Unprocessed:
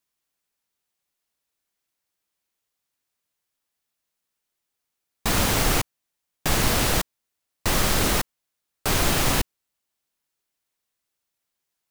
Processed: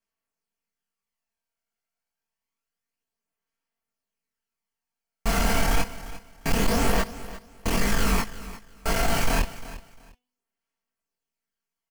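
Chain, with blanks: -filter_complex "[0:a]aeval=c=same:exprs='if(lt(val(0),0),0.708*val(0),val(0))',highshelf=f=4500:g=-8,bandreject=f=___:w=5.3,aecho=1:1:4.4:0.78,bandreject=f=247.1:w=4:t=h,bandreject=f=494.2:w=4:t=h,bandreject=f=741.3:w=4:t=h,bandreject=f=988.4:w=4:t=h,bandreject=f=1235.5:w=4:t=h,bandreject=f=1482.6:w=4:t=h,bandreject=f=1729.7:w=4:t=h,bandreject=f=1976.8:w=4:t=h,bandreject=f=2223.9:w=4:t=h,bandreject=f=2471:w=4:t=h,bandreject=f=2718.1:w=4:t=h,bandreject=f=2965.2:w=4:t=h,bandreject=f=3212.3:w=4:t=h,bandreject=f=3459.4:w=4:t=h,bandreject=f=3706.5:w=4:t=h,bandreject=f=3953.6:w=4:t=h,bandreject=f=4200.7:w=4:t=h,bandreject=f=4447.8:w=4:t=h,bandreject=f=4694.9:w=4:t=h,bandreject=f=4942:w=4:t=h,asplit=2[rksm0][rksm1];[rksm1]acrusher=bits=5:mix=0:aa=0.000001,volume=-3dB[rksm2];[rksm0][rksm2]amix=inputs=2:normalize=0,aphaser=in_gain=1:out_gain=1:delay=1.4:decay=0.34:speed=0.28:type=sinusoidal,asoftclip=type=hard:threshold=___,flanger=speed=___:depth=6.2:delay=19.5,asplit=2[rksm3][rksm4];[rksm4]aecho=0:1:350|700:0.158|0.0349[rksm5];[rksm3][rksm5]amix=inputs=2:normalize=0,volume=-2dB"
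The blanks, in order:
3700, -12dB, 1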